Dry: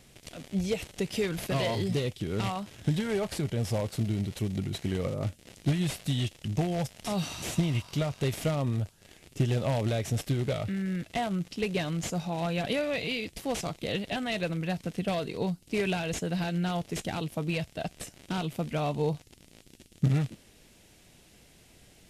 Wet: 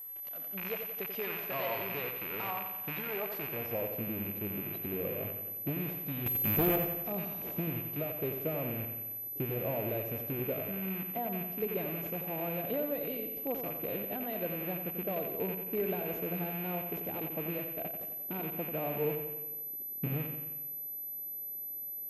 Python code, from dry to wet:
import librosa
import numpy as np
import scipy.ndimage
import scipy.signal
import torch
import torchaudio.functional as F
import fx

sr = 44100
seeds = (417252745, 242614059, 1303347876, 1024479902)

p1 = fx.rattle_buzz(x, sr, strikes_db=-37.0, level_db=-20.0)
p2 = fx.filter_sweep_bandpass(p1, sr, from_hz=980.0, to_hz=430.0, start_s=3.34, end_s=3.87, q=1.0)
p3 = p2 + 10.0 ** (-39.0 / 20.0) * np.sin(2.0 * np.pi * 12000.0 * np.arange(len(p2)) / sr)
p4 = fx.leveller(p3, sr, passes=3, at=(6.26, 6.76))
p5 = p4 + fx.echo_feedback(p4, sr, ms=89, feedback_pct=58, wet_db=-7.0, dry=0)
y = F.gain(torch.from_numpy(p5), -3.0).numpy()